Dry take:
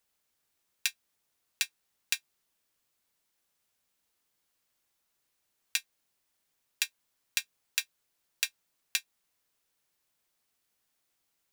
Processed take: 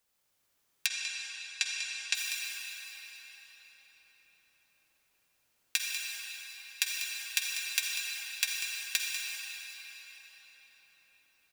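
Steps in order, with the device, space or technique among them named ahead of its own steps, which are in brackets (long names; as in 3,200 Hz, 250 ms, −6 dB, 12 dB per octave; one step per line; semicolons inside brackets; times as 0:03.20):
cave (single-tap delay 194 ms −10.5 dB; convolution reverb RT60 5.4 s, pre-delay 44 ms, DRR −2 dB)
0:00.86–0:02.15: low-pass filter 7,700 Hz 24 dB per octave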